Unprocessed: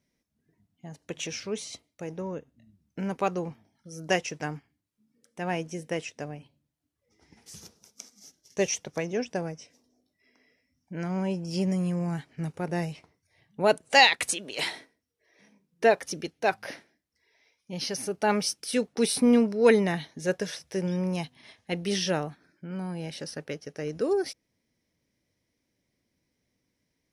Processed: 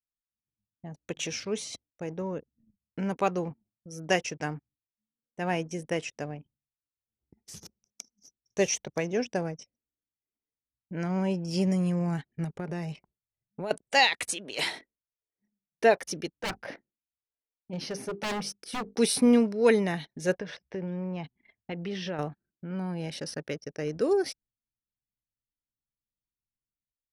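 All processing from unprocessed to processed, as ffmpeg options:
ffmpeg -i in.wav -filter_complex "[0:a]asettb=1/sr,asplit=3[link_01][link_02][link_03];[link_01]atrim=end=12.444[link_04];[link_02]atrim=start=12.44:end=13.71,asetpts=PTS-STARTPTS,afade=type=in:duration=0.004:curve=qsin,afade=type=out:start_time=1.266:duration=0.004:curve=qsin,aecho=1:1:5:0.3,atrim=end_sample=56007,acompressor=threshold=-31dB:ratio=4:attack=3.2:release=140:knee=1:detection=peak[link_05];[link_03]atrim=start=13.706[link_06];[link_04][link_05]acrossfade=duration=0.004:curve1=hsin:curve2=qsin[link_07];[link_07][link_06]acrossfade=duration=0.004:curve1=qsin:curve2=hsin,asettb=1/sr,asplit=3[link_08][link_09][link_10];[link_08]atrim=end=16.394[link_11];[link_09]atrim=start=16.39:end=18.95,asetpts=PTS-STARTPTS,afade=type=in:duration=0.004:curve=qsin,afade=type=out:start_time=2.556:duration=0.004:curve=qsin,highshelf=frequency=2900:gain=-11,aeval=exprs='0.0473*(abs(mod(val(0)/0.0473+3,4)-2)-1)':channel_layout=same,bandreject=frequency=50:width_type=h:width=6,bandreject=frequency=100:width_type=h:width=6,bandreject=frequency=150:width_type=h:width=6,bandreject=frequency=200:width_type=h:width=6,bandreject=frequency=250:width_type=h:width=6,bandreject=frequency=300:width_type=h:width=6,bandreject=frequency=350:width_type=h:width=6,bandreject=frequency=400:width_type=h:width=6,bandreject=frequency=450:width_type=h:width=6[link_12];[link_10]atrim=start=18.946[link_13];[link_11][link_12]acrossfade=duration=0.004:curve1=hsin:curve2=qsin[link_14];[link_14][link_13]acrossfade=duration=0.004:curve1=qsin:curve2=hsin,asettb=1/sr,asplit=3[link_15][link_16][link_17];[link_15]atrim=end=20.394[link_18];[link_16]atrim=start=20.39:end=22.19,asetpts=PTS-STARTPTS,afade=type=in:duration=0.004:curve=qsin,afade=type=out:start_time=1.796:duration=0.004:curve=qsin,lowpass=2800,acompressor=threshold=-33dB:ratio=3:attack=3.2:release=140:knee=1:detection=peak[link_19];[link_17]atrim=start=22.186[link_20];[link_18][link_19]acrossfade=duration=0.004:curve1=hsin:curve2=qsin[link_21];[link_21][link_20]acrossfade=duration=0.004:curve1=qsin:curve2=hsin,agate=range=-6dB:threshold=-59dB:ratio=16:detection=peak,anlmdn=0.0158,dynaudnorm=framelen=100:gausssize=7:maxgain=8dB,volume=-7dB" out.wav

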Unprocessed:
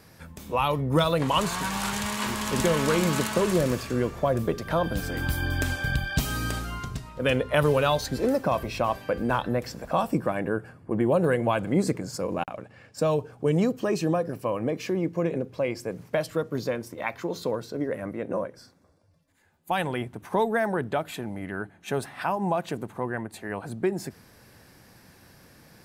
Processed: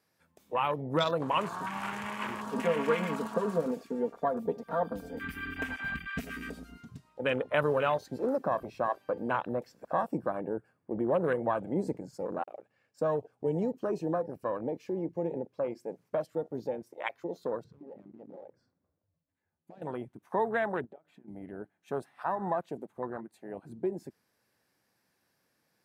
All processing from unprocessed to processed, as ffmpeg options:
ffmpeg -i in.wav -filter_complex "[0:a]asettb=1/sr,asplit=3[link_01][link_02][link_03];[link_01]atrim=end=2.464[link_04];[link_02]atrim=start=2.46:end=6.89,asetpts=PTS-STARTPTS,afade=type=in:duration=0.004:curve=qsin,afade=type=out:start_time=4.426:duration=0.004:curve=qsin,aecho=1:1:4.3:0.85,atrim=end_sample=195363,acrossover=split=1500[link_05][link_06];[link_05]aeval=exprs='val(0)*(1-0.5/2+0.5/2*cos(2*PI*8.9*n/s))':channel_layout=same[link_07];[link_06]aeval=exprs='val(0)*(1-0.5/2-0.5/2*cos(2*PI*8.9*n/s))':channel_layout=same[link_08];[link_07][link_08]amix=inputs=2:normalize=0[link_09];[link_03]atrim=start=6.886[link_10];[link_04][link_09]acrossfade=duration=0.004:curve1=hsin:curve2=qsin[link_11];[link_11][link_10]acrossfade=duration=0.004:curve1=qsin:curve2=hsin,asettb=1/sr,asplit=3[link_12][link_13][link_14];[link_12]atrim=end=17.644[link_15];[link_13]atrim=start=17.64:end=19.82,asetpts=PTS-STARTPTS,afade=type=in:duration=0.004:curve=qsin,afade=type=out:start_time=2.176:duration=0.004:curve=qsin,aemphasis=mode=reproduction:type=riaa,acompressor=threshold=-33dB:ratio=12:attack=3.2:release=140:knee=1:detection=peak,asoftclip=type=hard:threshold=-34dB[link_16];[link_14]atrim=start=19.816[link_17];[link_15][link_16]acrossfade=duration=0.004:curve1=hsin:curve2=qsin[link_18];[link_18][link_17]acrossfade=duration=0.004:curve1=qsin:curve2=hsin,asettb=1/sr,asplit=3[link_19][link_20][link_21];[link_19]atrim=end=20.854[link_22];[link_20]atrim=start=20.85:end=21.28,asetpts=PTS-STARTPTS,afade=type=in:duration=0.004:curve=qsin,afade=type=out:start_time=0.426:duration=0.004:curve=qsin,lowpass=frequency=1200:poles=1,acompressor=threshold=-38dB:ratio=12:attack=3.2:release=140:knee=1:detection=peak[link_23];[link_21]atrim=start=21.276[link_24];[link_22][link_23]acrossfade=duration=0.004:curve1=hsin:curve2=qsin[link_25];[link_25][link_24]acrossfade=duration=0.004:curve1=qsin:curve2=hsin,highpass=frequency=320:poles=1,afwtdn=0.0282,volume=-3.5dB" out.wav

